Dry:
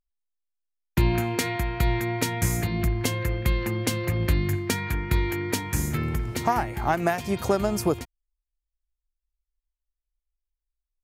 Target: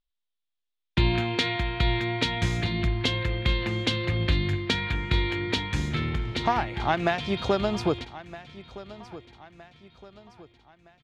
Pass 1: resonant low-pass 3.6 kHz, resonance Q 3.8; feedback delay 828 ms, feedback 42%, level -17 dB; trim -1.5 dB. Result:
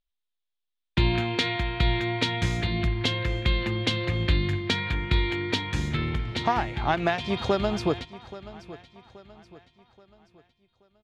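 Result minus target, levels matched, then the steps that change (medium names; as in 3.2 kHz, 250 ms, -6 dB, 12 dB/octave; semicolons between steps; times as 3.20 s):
echo 437 ms early
change: feedback delay 1265 ms, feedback 42%, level -17 dB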